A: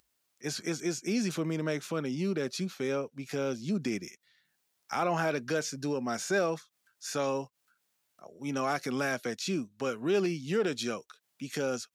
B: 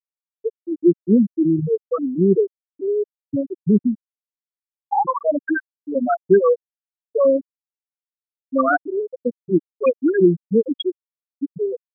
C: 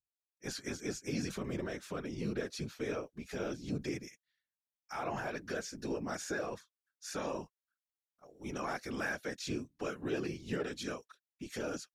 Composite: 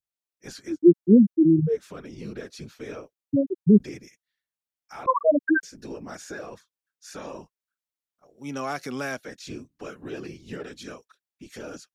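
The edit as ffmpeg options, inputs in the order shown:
-filter_complex "[1:a]asplit=3[a][b][c];[2:a]asplit=5[d][e][f][g][h];[d]atrim=end=0.79[i];[a]atrim=start=0.63:end=1.82[j];[e]atrim=start=1.66:end=3.132[k];[b]atrim=start=3.128:end=3.802[l];[f]atrim=start=3.798:end=5.062[m];[c]atrim=start=5.058:end=5.632[n];[g]atrim=start=5.628:end=8.382[o];[0:a]atrim=start=8.378:end=9.172[p];[h]atrim=start=9.168[q];[i][j]acrossfade=d=0.16:c1=tri:c2=tri[r];[r][k]acrossfade=d=0.16:c1=tri:c2=tri[s];[s][l]acrossfade=d=0.004:c1=hsin:c2=hsin[t];[t][m]acrossfade=d=0.004:c1=hsin:c2=hsin[u];[u][n]acrossfade=d=0.004:c1=hsin:c2=hsin[v];[v][o]acrossfade=d=0.004:c1=hsin:c2=hsin[w];[w][p]acrossfade=d=0.004:c1=hsin:c2=hsin[x];[x][q]acrossfade=d=0.004:c1=hsin:c2=hsin"

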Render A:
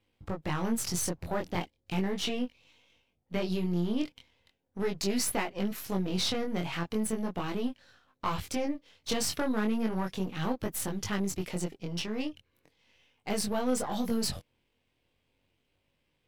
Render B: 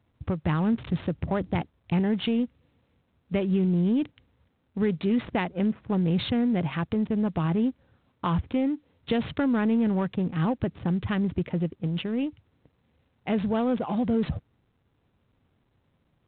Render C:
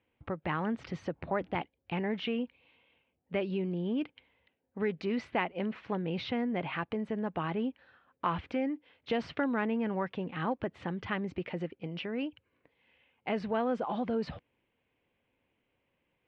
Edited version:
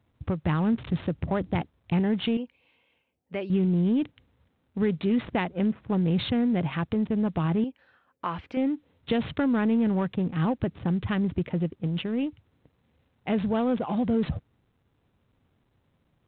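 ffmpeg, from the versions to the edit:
-filter_complex "[2:a]asplit=2[a][b];[1:a]asplit=3[c][d][e];[c]atrim=end=2.372[f];[a]atrim=start=2.368:end=3.502[g];[d]atrim=start=3.498:end=7.642[h];[b]atrim=start=7.638:end=8.572[i];[e]atrim=start=8.568[j];[f][g]acrossfade=d=0.004:c1=hsin:c2=hsin[k];[k][h]acrossfade=d=0.004:c1=hsin:c2=hsin[l];[l][i]acrossfade=d=0.004:c1=hsin:c2=hsin[m];[m][j]acrossfade=d=0.004:c1=hsin:c2=hsin"

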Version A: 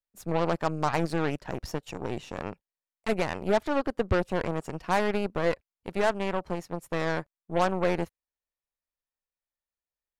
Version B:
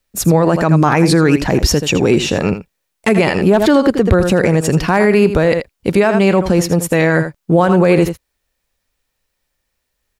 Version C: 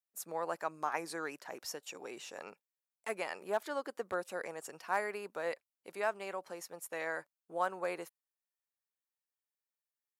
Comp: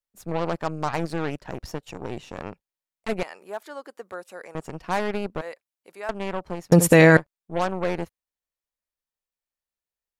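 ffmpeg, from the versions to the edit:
-filter_complex "[2:a]asplit=2[a][b];[0:a]asplit=4[c][d][e][f];[c]atrim=end=3.232[g];[a]atrim=start=3.228:end=4.552[h];[d]atrim=start=4.548:end=5.412[i];[b]atrim=start=5.408:end=6.092[j];[e]atrim=start=6.088:end=6.722[k];[1:a]atrim=start=6.718:end=7.172[l];[f]atrim=start=7.168[m];[g][h]acrossfade=d=0.004:c1=hsin:c2=hsin[n];[n][i]acrossfade=d=0.004:c1=hsin:c2=hsin[o];[o][j]acrossfade=d=0.004:c1=hsin:c2=hsin[p];[p][k]acrossfade=d=0.004:c1=hsin:c2=hsin[q];[q][l]acrossfade=d=0.004:c1=hsin:c2=hsin[r];[r][m]acrossfade=d=0.004:c1=hsin:c2=hsin"

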